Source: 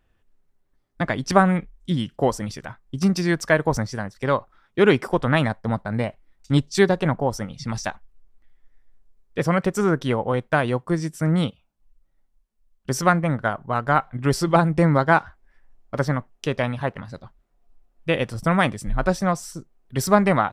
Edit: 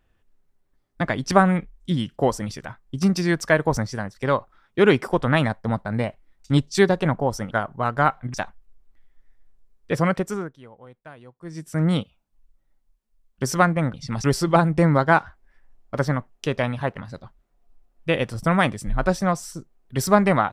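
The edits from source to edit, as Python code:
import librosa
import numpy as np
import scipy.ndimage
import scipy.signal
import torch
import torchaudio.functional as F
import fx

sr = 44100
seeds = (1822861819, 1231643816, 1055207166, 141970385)

y = fx.edit(x, sr, fx.swap(start_s=7.51, length_s=0.3, other_s=13.41, other_length_s=0.83),
    fx.fade_down_up(start_s=9.56, length_s=1.76, db=-23.0, fade_s=0.44), tone=tone)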